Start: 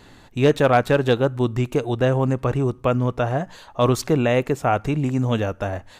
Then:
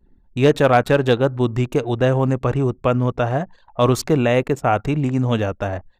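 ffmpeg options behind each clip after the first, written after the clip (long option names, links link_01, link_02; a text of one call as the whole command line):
ffmpeg -i in.wav -af "anlmdn=1,volume=2dB" out.wav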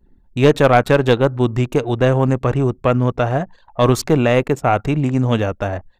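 ffmpeg -i in.wav -af "aeval=exprs='0.562*(cos(1*acos(clip(val(0)/0.562,-1,1)))-cos(1*PI/2))+0.0631*(cos(2*acos(clip(val(0)/0.562,-1,1)))-cos(2*PI/2))':channel_layout=same,volume=2dB" out.wav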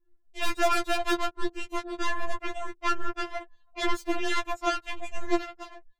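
ffmpeg -i in.wav -af "aeval=exprs='0.891*(cos(1*acos(clip(val(0)/0.891,-1,1)))-cos(1*PI/2))+0.178*(cos(7*acos(clip(val(0)/0.891,-1,1)))-cos(7*PI/2))':channel_layout=same,afftfilt=real='re*4*eq(mod(b,16),0)':imag='im*4*eq(mod(b,16),0)':win_size=2048:overlap=0.75,volume=-6.5dB" out.wav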